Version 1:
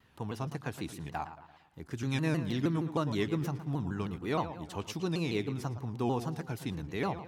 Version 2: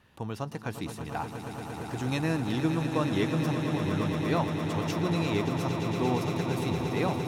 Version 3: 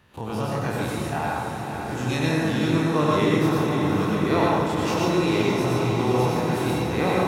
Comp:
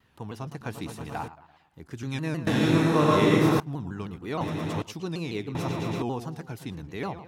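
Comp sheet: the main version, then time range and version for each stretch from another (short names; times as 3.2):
1
0.61–1.28 from 2
2.47–3.6 from 3
4.41–4.82 from 2
5.55–6.02 from 2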